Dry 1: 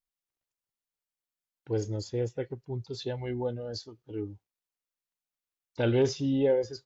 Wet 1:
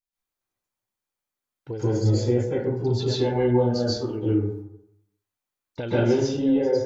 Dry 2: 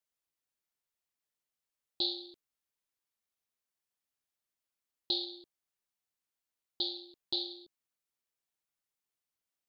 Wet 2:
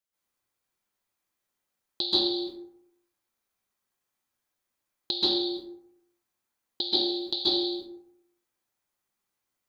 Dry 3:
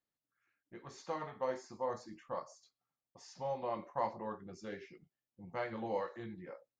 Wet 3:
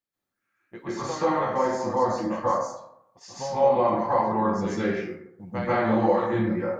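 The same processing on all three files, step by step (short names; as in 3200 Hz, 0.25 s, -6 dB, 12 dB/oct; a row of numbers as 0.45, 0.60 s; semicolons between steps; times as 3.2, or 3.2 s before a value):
gate -58 dBFS, range -11 dB; compressor 6:1, threshold -38 dBFS; plate-style reverb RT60 0.78 s, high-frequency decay 0.4×, pre-delay 0.12 s, DRR -10 dB; normalise peaks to -9 dBFS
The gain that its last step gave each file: +7.5, +10.0, +9.5 dB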